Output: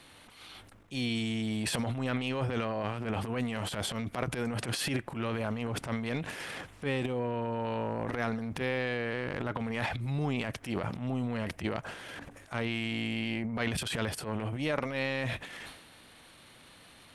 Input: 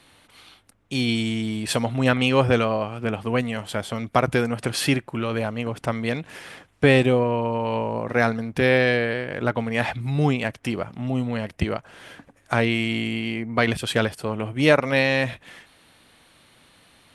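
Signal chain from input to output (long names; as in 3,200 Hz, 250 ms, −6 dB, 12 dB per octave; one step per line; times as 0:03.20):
downward compressor 6 to 1, threshold −29 dBFS, peak gain reduction 17 dB
transient designer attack −12 dB, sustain +10 dB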